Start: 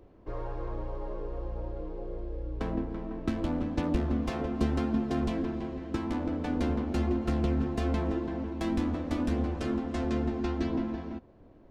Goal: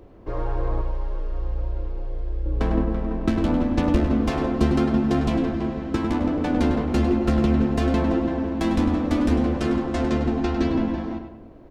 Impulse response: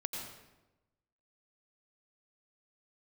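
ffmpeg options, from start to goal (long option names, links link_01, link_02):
-filter_complex "[0:a]asettb=1/sr,asplit=3[link_01][link_02][link_03];[link_01]atrim=end=0.814[link_04];[link_02]atrim=start=0.81:end=2.46,asetpts=PTS-STARTPTS,afade=type=in:duration=0.004:curve=qsin,afade=type=out:start_time=1.646:duration=0.004:curve=qsin,equalizer=frequency=340:width=0.34:gain=-10[link_05];[link_03]atrim=start=2.456[link_06];[link_04][link_05]acrossfade=duration=0.004:curve1=hsin:curve2=qsin[link_07];[link_07][link_06]acrossfade=duration=0.004:curve1=qsin:curve2=hsin,asplit=2[link_08][link_09];[link_09]adelay=101,lowpass=frequency=2900:poles=1,volume=-6dB,asplit=2[link_10][link_11];[link_11]adelay=101,lowpass=frequency=2900:poles=1,volume=0.4,asplit=2[link_12][link_13];[link_13]adelay=101,lowpass=frequency=2900:poles=1,volume=0.4,asplit=2[link_14][link_15];[link_15]adelay=101,lowpass=frequency=2900:poles=1,volume=0.4,asplit=2[link_16][link_17];[link_17]adelay=101,lowpass=frequency=2900:poles=1,volume=0.4[link_18];[link_08][link_10][link_12][link_14][link_16][link_18]amix=inputs=6:normalize=0,asplit=2[link_19][link_20];[1:a]atrim=start_sample=2205[link_21];[link_20][link_21]afir=irnorm=-1:irlink=0,volume=-13dB[link_22];[link_19][link_22]amix=inputs=2:normalize=0,volume=6.5dB"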